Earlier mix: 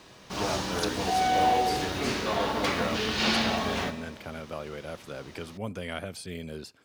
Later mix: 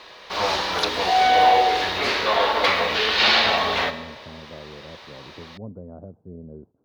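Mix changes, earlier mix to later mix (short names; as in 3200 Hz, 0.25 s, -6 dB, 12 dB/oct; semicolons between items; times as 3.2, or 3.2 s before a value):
speech: add Gaussian blur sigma 12 samples; background: add graphic EQ 125/250/500/1000/2000/4000/8000 Hz -11/-6/+8/+7/+8/+11/-7 dB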